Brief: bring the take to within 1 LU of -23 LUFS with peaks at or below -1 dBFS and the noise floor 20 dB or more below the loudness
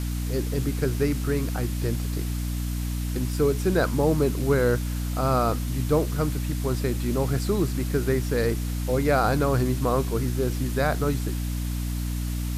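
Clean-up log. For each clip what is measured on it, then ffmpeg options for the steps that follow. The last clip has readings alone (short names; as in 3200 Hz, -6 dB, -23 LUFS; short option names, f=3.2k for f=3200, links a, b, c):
hum 60 Hz; harmonics up to 300 Hz; hum level -25 dBFS; noise floor -28 dBFS; noise floor target -46 dBFS; loudness -25.5 LUFS; peak -8.5 dBFS; loudness target -23.0 LUFS
-> -af "bandreject=f=60:t=h:w=6,bandreject=f=120:t=h:w=6,bandreject=f=180:t=h:w=6,bandreject=f=240:t=h:w=6,bandreject=f=300:t=h:w=6"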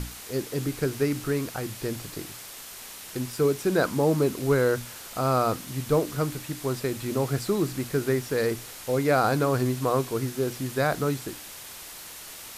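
hum none; noise floor -42 dBFS; noise floor target -47 dBFS
-> -af "afftdn=nr=6:nf=-42"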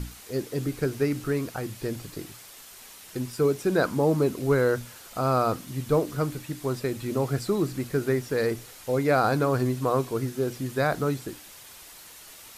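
noise floor -47 dBFS; loudness -27.0 LUFS; peak -10.0 dBFS; loudness target -23.0 LUFS
-> -af "volume=4dB"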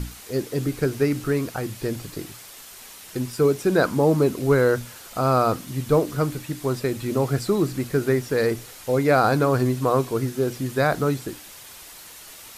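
loudness -23.0 LUFS; peak -6.0 dBFS; noise floor -43 dBFS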